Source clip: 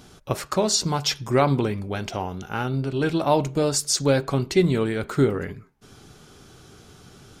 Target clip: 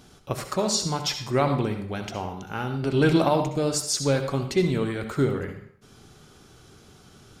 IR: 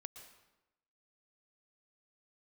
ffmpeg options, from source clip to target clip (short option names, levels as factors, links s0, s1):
-filter_complex "[0:a]asplit=3[s0][s1][s2];[s0]afade=t=out:st=2.82:d=0.02[s3];[s1]acontrast=85,afade=t=in:st=2.82:d=0.02,afade=t=out:st=3.27:d=0.02[s4];[s2]afade=t=in:st=3.27:d=0.02[s5];[s3][s4][s5]amix=inputs=3:normalize=0[s6];[1:a]atrim=start_sample=2205,asetrate=79380,aresample=44100[s7];[s6][s7]afir=irnorm=-1:irlink=0,volume=2.37"